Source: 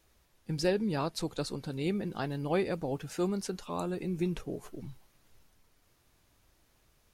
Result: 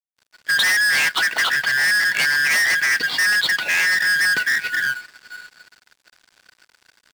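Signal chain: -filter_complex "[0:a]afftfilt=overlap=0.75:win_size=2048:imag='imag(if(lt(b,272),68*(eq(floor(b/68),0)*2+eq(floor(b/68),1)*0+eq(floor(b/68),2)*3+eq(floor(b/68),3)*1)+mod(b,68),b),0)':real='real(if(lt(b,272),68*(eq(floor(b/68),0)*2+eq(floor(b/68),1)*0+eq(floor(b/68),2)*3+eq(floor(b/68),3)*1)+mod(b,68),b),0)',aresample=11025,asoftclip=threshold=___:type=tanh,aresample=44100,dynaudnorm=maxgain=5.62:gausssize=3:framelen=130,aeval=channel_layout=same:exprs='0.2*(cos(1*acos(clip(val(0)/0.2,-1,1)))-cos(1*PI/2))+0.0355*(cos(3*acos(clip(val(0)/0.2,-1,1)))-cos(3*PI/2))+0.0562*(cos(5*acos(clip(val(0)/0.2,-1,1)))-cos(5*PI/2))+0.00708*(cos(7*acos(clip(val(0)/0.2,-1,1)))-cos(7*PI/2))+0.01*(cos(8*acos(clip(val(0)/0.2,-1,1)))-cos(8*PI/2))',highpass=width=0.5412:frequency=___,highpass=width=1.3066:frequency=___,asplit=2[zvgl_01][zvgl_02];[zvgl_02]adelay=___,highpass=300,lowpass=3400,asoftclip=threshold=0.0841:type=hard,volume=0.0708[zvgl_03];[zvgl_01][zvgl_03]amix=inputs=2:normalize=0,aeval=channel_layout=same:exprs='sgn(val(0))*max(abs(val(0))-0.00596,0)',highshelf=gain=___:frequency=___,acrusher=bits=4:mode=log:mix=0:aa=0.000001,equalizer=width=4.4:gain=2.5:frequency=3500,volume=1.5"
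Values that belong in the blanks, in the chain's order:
0.0211, 120, 120, 300, 3.5, 2200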